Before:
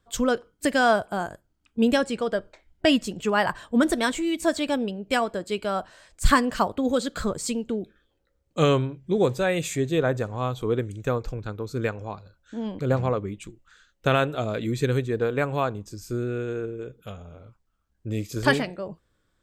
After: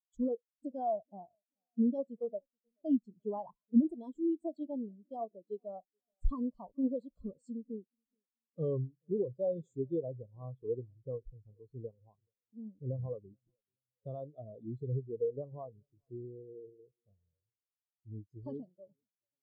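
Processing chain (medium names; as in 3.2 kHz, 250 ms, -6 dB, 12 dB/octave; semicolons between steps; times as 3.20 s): high-order bell 1.9 kHz -15 dB 1.2 oct; peak limiter -15.5 dBFS, peak gain reduction 7.5 dB; on a send: feedback delay 429 ms, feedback 53%, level -19.5 dB; on the sum: spectral contrast expander 2.5:1; trim -1.5 dB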